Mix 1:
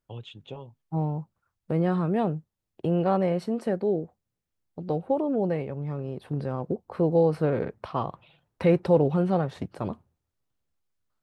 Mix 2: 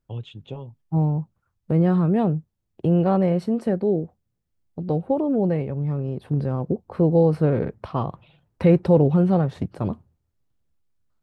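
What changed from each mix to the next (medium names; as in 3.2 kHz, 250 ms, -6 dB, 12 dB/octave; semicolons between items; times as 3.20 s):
master: add bass shelf 310 Hz +9.5 dB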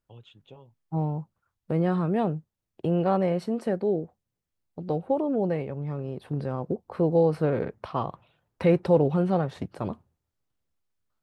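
first voice -9.0 dB; master: add bass shelf 310 Hz -9.5 dB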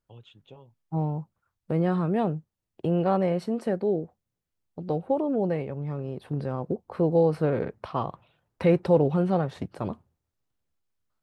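no change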